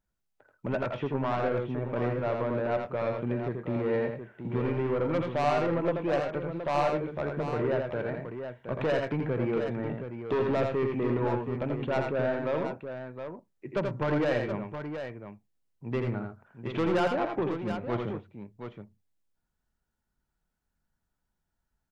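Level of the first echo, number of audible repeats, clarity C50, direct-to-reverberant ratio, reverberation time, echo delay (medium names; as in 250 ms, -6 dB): -4.5 dB, 2, no reverb, no reverb, no reverb, 83 ms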